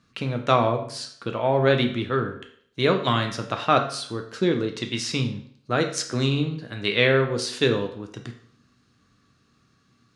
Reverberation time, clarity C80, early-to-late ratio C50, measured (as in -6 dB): 0.60 s, 13.0 dB, 10.0 dB